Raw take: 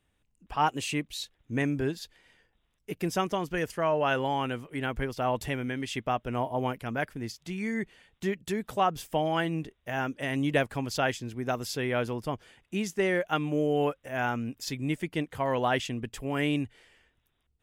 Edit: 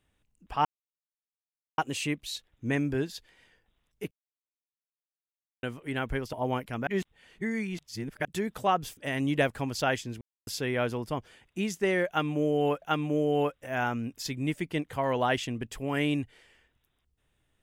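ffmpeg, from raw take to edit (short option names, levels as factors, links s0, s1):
-filter_complex "[0:a]asplit=11[s0][s1][s2][s3][s4][s5][s6][s7][s8][s9][s10];[s0]atrim=end=0.65,asetpts=PTS-STARTPTS,afade=t=out:st=0.646:d=0.004:c=hsin,apad=pad_dur=1.13[s11];[s1]atrim=start=0.65:end=2.98,asetpts=PTS-STARTPTS,afade=t=in:d=0.004:c=hsin,afade=t=out:st=2.326:d=0.004:c=hsin[s12];[s2]atrim=start=2.98:end=4.5,asetpts=PTS-STARTPTS,volume=0[s13];[s3]atrim=start=4.5:end=5.202,asetpts=PTS-STARTPTS,afade=t=in:d=0.004:c=hsin[s14];[s4]atrim=start=6.458:end=7.002[s15];[s5]atrim=start=6.998:end=8.382,asetpts=PTS-STARTPTS,areverse[s16];[s6]atrim=start=8.378:end=9.102[s17];[s7]atrim=start=10.128:end=11.37,asetpts=PTS-STARTPTS,afade=t=out:st=1.238:d=0.004:c=hsin[s18];[s8]atrim=start=11.37:end=11.63,asetpts=PTS-STARTPTS,volume=0[s19];[s9]atrim=start=11.63:end=13.982,asetpts=PTS-STARTPTS,afade=t=in:d=0.004:c=hsin[s20];[s10]atrim=start=13.238[s21];[s11][s12][s13][s14]concat=n=4:v=0:a=1[s22];[s22][s15]acrossfade=d=0.004:c1=hsin:c2=hsin[s23];[s23][s16]acrossfade=d=0.004:c1=hsin:c2=hsin[s24];[s24][s17]acrossfade=d=0.004:c1=hsin:c2=hsin[s25];[s18][s19][s20]concat=n=3:v=0:a=1[s26];[s25][s26]acrossfade=d=0.004:c1=hsin:c2=hsin[s27];[s27][s21]acrossfade=d=0.004:c1=hsin:c2=hsin"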